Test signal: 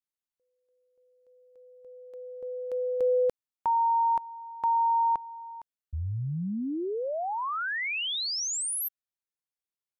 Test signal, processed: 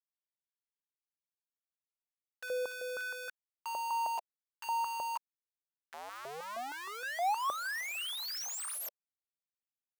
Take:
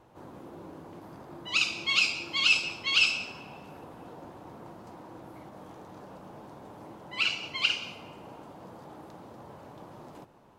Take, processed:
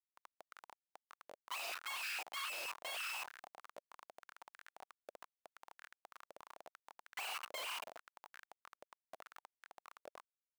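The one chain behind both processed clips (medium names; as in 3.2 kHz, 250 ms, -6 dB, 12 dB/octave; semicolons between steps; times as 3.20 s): level held to a coarse grid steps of 19 dB; Schmitt trigger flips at -48.5 dBFS; step-sequenced high-pass 6.4 Hz 580–1600 Hz; trim +1 dB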